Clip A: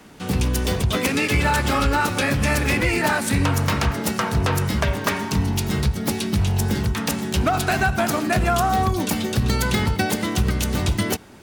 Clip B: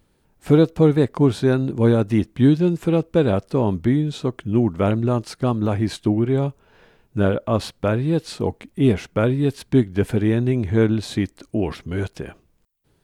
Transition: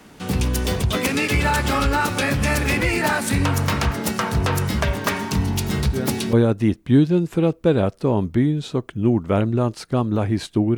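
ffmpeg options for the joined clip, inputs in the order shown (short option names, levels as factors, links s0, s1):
-filter_complex "[1:a]asplit=2[s0][s1];[0:a]apad=whole_dur=10.77,atrim=end=10.77,atrim=end=6.332[s2];[s1]atrim=start=1.828:end=6.27[s3];[s0]atrim=start=1.4:end=1.83,asetpts=PTS-STARTPTS,volume=0.355,afade=t=in:d=0.004:c=hsin,afade=t=out:st=0.426:d=0.004:c=hsin,adelay=5900[s4];[s2][s3]acrossfade=d=0.004:c1=hsin:c2=hsin[s5];[s5][s4]amix=inputs=2:normalize=0"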